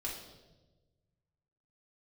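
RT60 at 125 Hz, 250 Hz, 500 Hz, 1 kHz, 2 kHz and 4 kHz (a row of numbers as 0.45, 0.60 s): 2.1, 1.5, 1.4, 1.0, 0.85, 0.95 s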